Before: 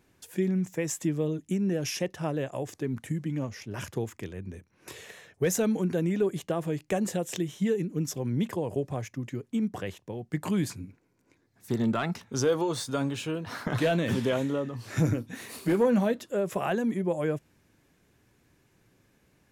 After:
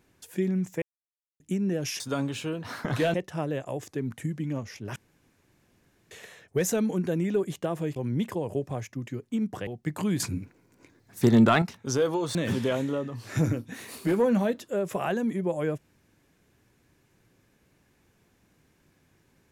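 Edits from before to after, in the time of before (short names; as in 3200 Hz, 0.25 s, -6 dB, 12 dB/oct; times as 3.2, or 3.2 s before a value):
0.82–1.4 mute
3.82–4.97 room tone
6.82–8.17 cut
9.88–10.14 cut
10.67–12.09 gain +8.5 dB
12.82–13.96 move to 2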